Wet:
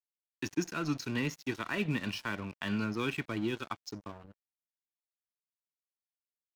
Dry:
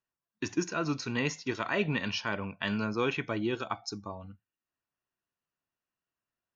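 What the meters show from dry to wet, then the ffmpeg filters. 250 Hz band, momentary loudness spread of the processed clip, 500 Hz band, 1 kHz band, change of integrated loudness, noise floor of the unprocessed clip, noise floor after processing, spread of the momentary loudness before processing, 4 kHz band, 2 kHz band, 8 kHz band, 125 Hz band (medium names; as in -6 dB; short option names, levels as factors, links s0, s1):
-1.0 dB, 9 LU, -6.0 dB, -4.5 dB, -3.0 dB, under -85 dBFS, under -85 dBFS, 10 LU, -4.0 dB, -3.5 dB, no reading, -1.5 dB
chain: -filter_complex "[0:a]adynamicequalizer=threshold=0.00891:dfrequency=330:dqfactor=1.5:tfrequency=330:tqfactor=1.5:attack=5:release=100:ratio=0.375:range=2.5:mode=boostabove:tftype=bell,acrossover=split=300|1100|1400[s0][s1][s2][s3];[s1]acompressor=threshold=0.00708:ratio=10[s4];[s3]alimiter=level_in=1.41:limit=0.0631:level=0:latency=1:release=97,volume=0.708[s5];[s0][s4][s2][s5]amix=inputs=4:normalize=0,aeval=exprs='sgn(val(0))*max(abs(val(0))-0.00501,0)':c=same"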